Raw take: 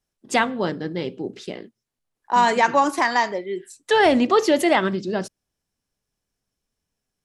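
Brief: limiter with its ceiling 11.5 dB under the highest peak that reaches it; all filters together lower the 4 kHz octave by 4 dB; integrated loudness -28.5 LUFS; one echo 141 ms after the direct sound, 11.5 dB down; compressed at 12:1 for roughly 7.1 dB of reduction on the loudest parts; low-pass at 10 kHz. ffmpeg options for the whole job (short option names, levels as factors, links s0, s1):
-af "lowpass=10000,equalizer=f=4000:t=o:g=-5.5,acompressor=threshold=0.112:ratio=12,alimiter=limit=0.0794:level=0:latency=1,aecho=1:1:141:0.266,volume=1.41"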